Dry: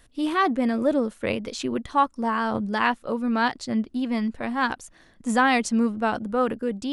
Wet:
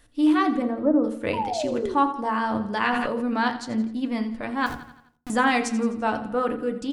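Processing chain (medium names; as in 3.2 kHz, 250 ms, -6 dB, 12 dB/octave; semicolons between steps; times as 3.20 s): 0.62–1.04 s: low-pass 1.3 kHz 24 dB/octave; 1.33–1.95 s: painted sound fall 350–1000 Hz -27 dBFS; 4.66–5.30 s: Schmitt trigger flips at -29 dBFS; feedback delay 85 ms, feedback 52%, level -14 dB; FDN reverb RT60 0.38 s, low-frequency decay 1.55×, high-frequency decay 0.45×, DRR 6.5 dB; 2.82–3.34 s: decay stretcher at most 22 dB/s; trim -2 dB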